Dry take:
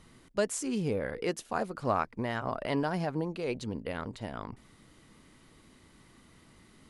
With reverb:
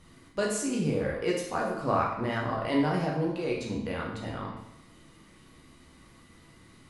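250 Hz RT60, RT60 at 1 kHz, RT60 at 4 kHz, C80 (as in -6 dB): 0.85 s, 0.85 s, 0.75 s, 6.0 dB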